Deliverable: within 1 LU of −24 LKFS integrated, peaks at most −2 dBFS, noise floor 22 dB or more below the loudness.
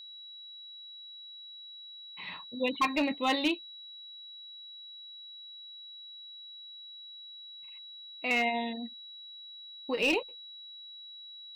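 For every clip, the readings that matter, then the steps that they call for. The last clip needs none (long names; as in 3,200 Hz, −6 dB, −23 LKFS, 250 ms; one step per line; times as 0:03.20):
share of clipped samples 0.2%; peaks flattened at −21.0 dBFS; interfering tone 3,900 Hz; level of the tone −45 dBFS; integrated loudness −35.5 LKFS; sample peak −21.0 dBFS; target loudness −24.0 LKFS
→ clipped peaks rebuilt −21 dBFS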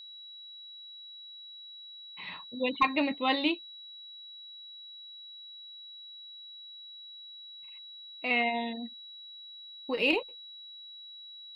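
share of clipped samples 0.0%; interfering tone 3,900 Hz; level of the tone −45 dBFS
→ notch filter 3,900 Hz, Q 30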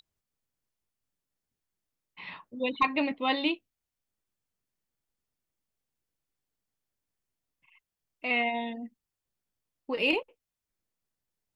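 interfering tone none found; integrated loudness −29.5 LKFS; sample peak −12.0 dBFS; target loudness −24.0 LKFS
→ level +5.5 dB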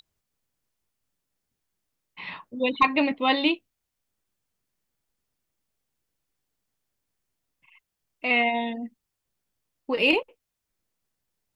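integrated loudness −24.0 LKFS; sample peak −6.5 dBFS; background noise floor −83 dBFS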